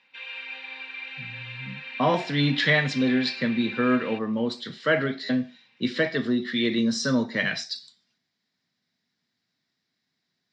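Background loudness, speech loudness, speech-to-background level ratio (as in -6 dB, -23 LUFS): -36.0 LUFS, -25.0 LUFS, 11.0 dB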